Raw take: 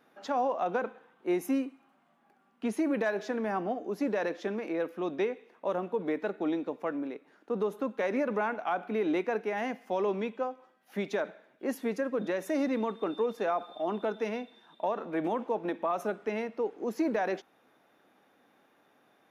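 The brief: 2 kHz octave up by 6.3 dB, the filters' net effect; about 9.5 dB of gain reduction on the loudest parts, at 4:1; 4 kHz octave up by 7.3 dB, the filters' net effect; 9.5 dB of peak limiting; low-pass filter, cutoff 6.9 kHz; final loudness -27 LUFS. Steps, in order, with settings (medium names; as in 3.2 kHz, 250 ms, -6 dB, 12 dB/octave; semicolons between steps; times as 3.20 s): low-pass 6.9 kHz; peaking EQ 2 kHz +6.5 dB; peaking EQ 4 kHz +7 dB; compression 4:1, threshold -36 dBFS; trim +16 dB; peak limiter -17 dBFS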